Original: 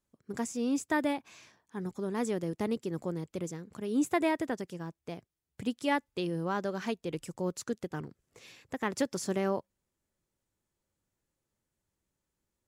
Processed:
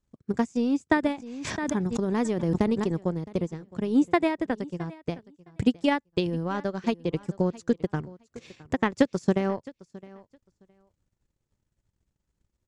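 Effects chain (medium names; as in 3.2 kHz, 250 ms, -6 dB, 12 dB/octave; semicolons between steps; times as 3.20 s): low-pass 8.3 kHz 24 dB/octave; bass shelf 160 Hz +12 dB; transient shaper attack +9 dB, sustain -11 dB; feedback delay 664 ms, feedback 16%, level -20.5 dB; 1.03–3.03 s: swell ahead of each attack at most 29 dB/s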